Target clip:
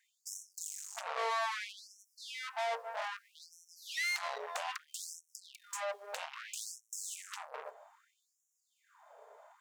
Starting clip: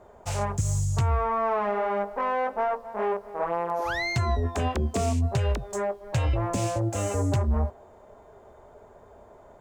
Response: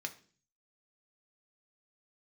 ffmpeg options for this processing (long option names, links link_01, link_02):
-af "aeval=exprs='(tanh(44.7*val(0)+0.8)-tanh(0.8))/44.7':channel_layout=same,asubboost=boost=8:cutoff=170,afftfilt=real='re*gte(b*sr/1024,390*pow(5500/390,0.5+0.5*sin(2*PI*0.62*pts/sr)))':imag='im*gte(b*sr/1024,390*pow(5500/390,0.5+0.5*sin(2*PI*0.62*pts/sr)))':win_size=1024:overlap=0.75,volume=3dB"